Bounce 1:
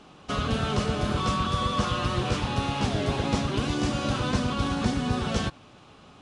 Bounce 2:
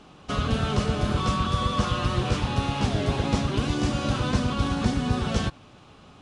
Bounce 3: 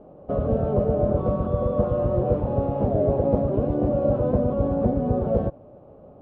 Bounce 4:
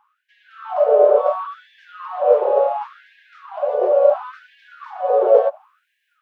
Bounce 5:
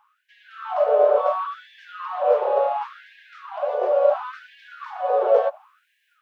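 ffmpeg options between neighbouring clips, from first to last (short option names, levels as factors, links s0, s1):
-af "lowshelf=f=130:g=5"
-af "lowpass=f=570:t=q:w=4.9"
-af "dynaudnorm=f=360:g=3:m=3.76,afftfilt=real='re*gte(b*sr/1024,380*pow(1600/380,0.5+0.5*sin(2*PI*0.71*pts/sr)))':imag='im*gte(b*sr/1024,380*pow(1600/380,0.5+0.5*sin(2*PI*0.71*pts/sr)))':win_size=1024:overlap=0.75,volume=1.68"
-af "equalizer=f=290:t=o:w=2.2:g=-14,volume=1.5"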